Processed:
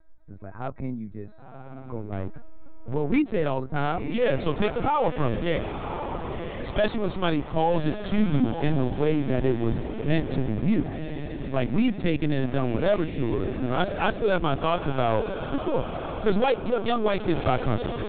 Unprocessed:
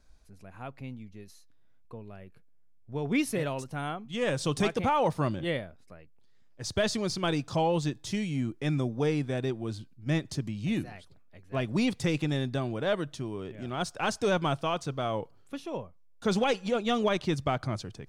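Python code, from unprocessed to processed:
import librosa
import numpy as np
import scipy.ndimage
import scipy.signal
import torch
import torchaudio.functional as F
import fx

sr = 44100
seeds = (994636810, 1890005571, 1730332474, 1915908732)

y = fx.wiener(x, sr, points=15)
y = fx.leveller(y, sr, passes=3, at=(2.12, 2.94))
y = fx.rider(y, sr, range_db=4, speed_s=0.5)
y = np.clip(y, -10.0 ** (-22.0 / 20.0), 10.0 ** (-22.0 / 20.0))
y = fx.doubler(y, sr, ms=28.0, db=-4.0, at=(8.04, 8.75))
y = fx.echo_diffused(y, sr, ms=1034, feedback_pct=50, wet_db=-8)
y = fx.lpc_vocoder(y, sr, seeds[0], excitation='pitch_kept', order=16)
y = y * librosa.db_to_amplitude(6.0)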